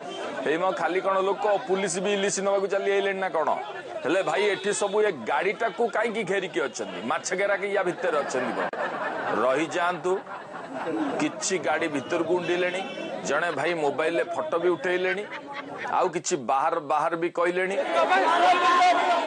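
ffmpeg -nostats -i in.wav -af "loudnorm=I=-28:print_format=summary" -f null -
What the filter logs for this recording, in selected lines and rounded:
Input Integrated:    -24.8 LUFS
Input True Peak:     -10.6 dBTP
Input LRA:             4.6 LU
Input Threshold:     -34.9 LUFS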